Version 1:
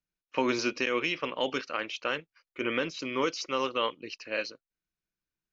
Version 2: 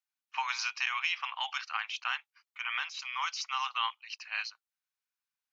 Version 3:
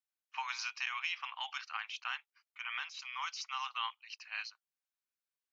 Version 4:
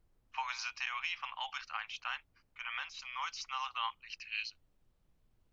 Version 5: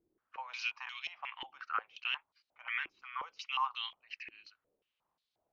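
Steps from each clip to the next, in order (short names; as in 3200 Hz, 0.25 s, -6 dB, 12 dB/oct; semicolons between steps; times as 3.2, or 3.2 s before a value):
Chebyshev high-pass 780 Hz, order 6
low shelf 410 Hz -3.5 dB; gain -5.5 dB
high-pass sweep 520 Hz -> 2900 Hz, 3.8–4.31; added noise brown -70 dBFS; gain -1 dB
stepped band-pass 5.6 Hz 340–4000 Hz; gain +9.5 dB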